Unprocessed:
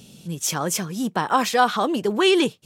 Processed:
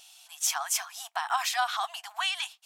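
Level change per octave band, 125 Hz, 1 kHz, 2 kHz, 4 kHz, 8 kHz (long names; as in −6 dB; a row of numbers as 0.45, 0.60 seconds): below −40 dB, −8.5 dB, −6.0 dB, −5.0 dB, −2.5 dB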